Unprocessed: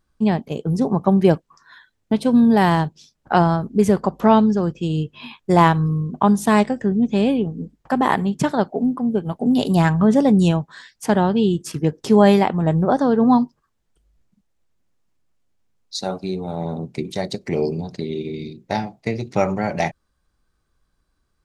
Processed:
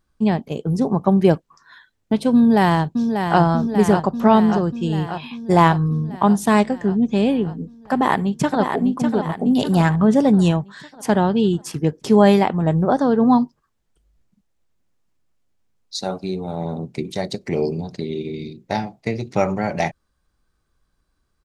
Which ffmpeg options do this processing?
-filter_complex "[0:a]asplit=2[s0][s1];[s1]afade=t=in:st=2.36:d=0.01,afade=t=out:st=3.4:d=0.01,aecho=0:1:590|1180|1770|2360|2950|3540|4130|4720|5310|5900|6490:0.473151|0.331206|0.231844|0.162291|0.113604|0.0795225|0.0556658|0.038966|0.0272762|0.0190934|0.0133654[s2];[s0][s2]amix=inputs=2:normalize=0,asplit=2[s3][s4];[s4]afade=t=in:st=7.92:d=0.01,afade=t=out:st=8.61:d=0.01,aecho=0:1:600|1200|1800|2400|3000|3600:0.501187|0.250594|0.125297|0.0626484|0.0313242|0.0156621[s5];[s3][s5]amix=inputs=2:normalize=0"

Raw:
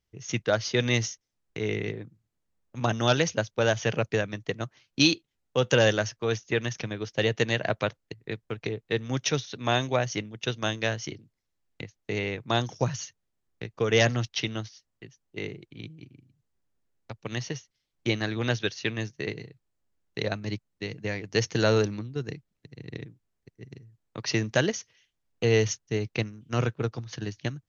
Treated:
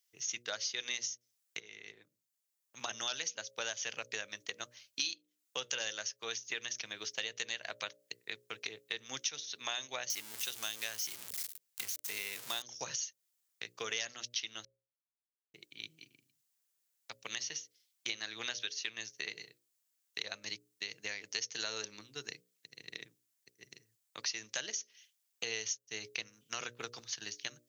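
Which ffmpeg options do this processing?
-filter_complex "[0:a]asettb=1/sr,asplit=3[s0][s1][s2];[s0]atrim=end=10.104[s3];[s1]atrim=start=10.1:end=12.62,asetpts=PTS-STARTPTS,afade=t=in:d=0.004:c=qsin,afade=t=out:st=2.516:d=0.004:c=qsin,aeval=exprs='val(0)+0.5*0.0282*sgn(val(0))':c=same[s4];[s2]atrim=start=12.616[s5];[s3][s4]acrossfade=d=0.004:c1=hsin:c2=qsin[s6];[s6][s5]acrossfade=d=0.004:c1=qsin:c2=hsin,asplit=4[s7][s8][s9][s10];[s7]atrim=end=1.6,asetpts=PTS-STARTPTS,afade=t=out:st=1.596:d=0.004:c=hsin:silence=0.0749894[s11];[s8]atrim=start=1.6:end=14.65,asetpts=PTS-STARTPTS,afade=t=in:d=1.57:silence=0.0749894,afade=t=out:st=13.046:d=0.004:c=hsin[s12];[s9]atrim=start=14.65:end=15.54,asetpts=PTS-STARTPTS,volume=0[s13];[s10]atrim=start=15.54,asetpts=PTS-STARTPTS,afade=t=in:d=0.004:c=hsin[s14];[s11][s12][s13][s14]concat=n=4:v=0:a=1,aderivative,bandreject=f=60:t=h:w=6,bandreject=f=120:t=h:w=6,bandreject=f=180:t=h:w=6,bandreject=f=240:t=h:w=6,bandreject=f=300:t=h:w=6,bandreject=f=360:t=h:w=6,bandreject=f=420:t=h:w=6,bandreject=f=480:t=h:w=6,bandreject=f=540:t=h:w=6,bandreject=f=600:t=h:w=6,acompressor=threshold=0.00447:ratio=4,volume=3.35"

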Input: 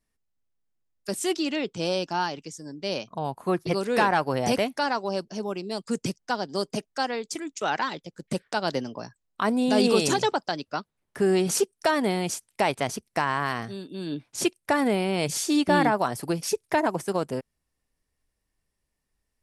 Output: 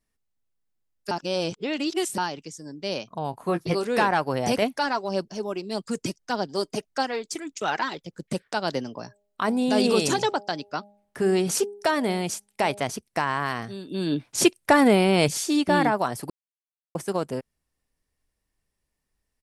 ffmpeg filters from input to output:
-filter_complex "[0:a]asplit=3[s0][s1][s2];[s0]afade=t=out:st=3.32:d=0.02[s3];[s1]asplit=2[s4][s5];[s5]adelay=18,volume=0.422[s6];[s4][s6]amix=inputs=2:normalize=0,afade=t=in:st=3.32:d=0.02,afade=t=out:st=3.84:d=0.02[s7];[s2]afade=t=in:st=3.84:d=0.02[s8];[s3][s7][s8]amix=inputs=3:normalize=0,asettb=1/sr,asplit=3[s9][s10][s11];[s9]atrim=end=4.624[s12];[s10]atrim=start=4.62:end=8.23,asetpts=PTS-STARTPTS,afade=t=in:d=0.004:c=qsin,afade=t=out:st=3.606:d=0.004:c=qsin,aphaser=in_gain=1:out_gain=1:delay=3.2:decay=0.37:speed=1.7:type=sinusoidal[s13];[s11]atrim=start=8.226[s14];[s12][s13]acrossfade=d=0.004:c1=hsin:c2=qsin[s15];[s15][s14]acrossfade=d=0.004:c1=qsin:c2=hsin,asettb=1/sr,asplit=3[s16][s17][s18];[s16]atrim=end=8.984[s19];[s17]atrim=start=8.98:end=12.84,asetpts=PTS-STARTPTS,afade=t=in:d=0.004:c=qsin,afade=t=out:st=3.856:d=0.004:c=qsin,bandreject=f=203.9:t=h:w=4,bandreject=f=407.8:t=h:w=4,bandreject=f=611.7:t=h:w=4,bandreject=f=815.6:t=h:w=4[s20];[s18]atrim=start=12.836[s21];[s19][s20]acrossfade=d=0.004:c1=hsin:c2=qsin[s22];[s22][s21]acrossfade=d=0.004:c1=qsin:c2=hsin,asettb=1/sr,asplit=3[s23][s24][s25];[s23]atrim=end=13.874[s26];[s24]atrim=start=13.87:end=15.29,asetpts=PTS-STARTPTS,afade=t=in:d=0.004:c=qsin,afade=t=out:st=1.416:d=0.004:c=qsin,acontrast=63[s27];[s25]atrim=start=15.286[s28];[s26][s27]acrossfade=d=0.004:c1=hsin:c2=qsin[s29];[s29][s28]acrossfade=d=0.004:c1=qsin:c2=hsin,asplit=5[s30][s31][s32][s33][s34];[s30]atrim=end=1.112[s35];[s31]atrim=start=1.108:end=2.182,asetpts=PTS-STARTPTS,areverse[s36];[s32]atrim=start=2.178:end=16.3,asetpts=PTS-STARTPTS,afade=t=out:st=14.118:d=0.004:c=hsin[s37];[s33]atrim=start=16.3:end=16.95,asetpts=PTS-STARTPTS,volume=0[s38];[s34]atrim=start=16.95,asetpts=PTS-STARTPTS,afade=t=in:d=0.004:c=hsin[s39];[s35][s36]acrossfade=d=0.004:c1=hsin:c2=hsin[s40];[s37][s38][s39]concat=n=3:v=0:a=1[s41];[s40][s41]acrossfade=d=0.004:c1=hsin:c2=hsin"

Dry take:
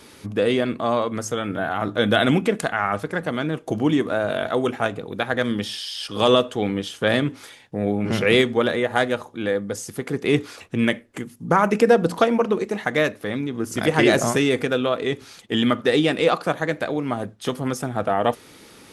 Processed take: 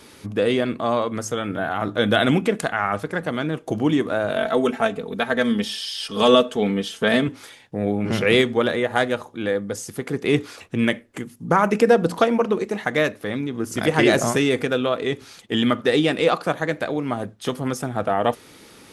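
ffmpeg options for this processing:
-filter_complex "[0:a]asettb=1/sr,asplit=3[s0][s1][s2];[s0]atrim=end=4.364[s3];[s1]atrim=start=4.36:end=7.28,asetpts=PTS-STARTPTS,afade=t=in:d=0.004:c=qsin,afade=t=out:st=2.916:d=0.004:c=qsin,aecho=1:1:4.5:0.68,atrim=end_sample=128772[s4];[s2]atrim=start=7.276[s5];[s3][s4]acrossfade=d=0.004:c1=hsin:c2=qsin[s6];[s6][s5]acrossfade=d=0.004:c1=qsin:c2=hsin"

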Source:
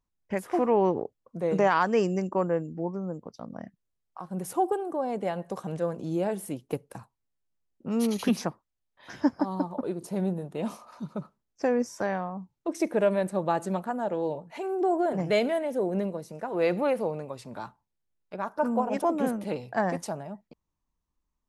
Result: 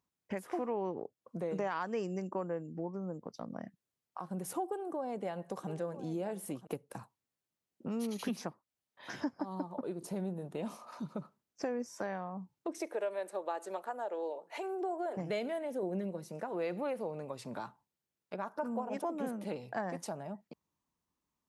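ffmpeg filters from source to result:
-filter_complex "[0:a]asettb=1/sr,asplit=3[s0][s1][s2];[s0]atrim=end=4.654[s3];[s1]atrim=start=4.65:end=6.67,asetpts=PTS-STARTPTS,afade=t=in:d=0.004:c=qsin,afade=t=out:st=2.016:d=0.004:c=qsin,aecho=1:1:981:0.158,atrim=end_sample=89082[s4];[s2]atrim=start=6.666[s5];[s3][s4]acrossfade=d=0.004:c1=hsin:c2=qsin[s6];[s6][s5]acrossfade=d=0.004:c1=qsin:c2=hsin,asettb=1/sr,asplit=3[s7][s8][s9];[s7]atrim=end=12.784[s10];[s8]atrim=start=12.78:end=15.17,asetpts=PTS-STARTPTS,afade=t=in:d=0.004:c=qsin,afade=t=out:st=2.386:d=0.004:c=qsin,highpass=f=370:w=0.5412,highpass=f=370:w=1.3066[s11];[s9]atrim=start=15.166[s12];[s10][s11]acrossfade=d=0.004:c1=hsin:c2=qsin[s13];[s13][s12]acrossfade=d=0.004:c1=qsin:c2=hsin,asettb=1/sr,asplit=3[s14][s15][s16];[s14]atrim=end=15.824[s17];[s15]atrim=start=15.82:end=16.29,asetpts=PTS-STARTPTS,afade=t=in:d=0.004:c=qsin,afade=t=out:st=0.466:d=0.004:c=qsin,aecho=1:1:5.5:0.65,atrim=end_sample=20727[s18];[s16]atrim=start=16.286[s19];[s17][s18]acrossfade=d=0.004:c1=hsin:c2=qsin[s20];[s20][s19]acrossfade=d=0.004:c1=qsin:c2=hsin,highpass=120,acompressor=threshold=0.01:ratio=2.5,volume=1.12"

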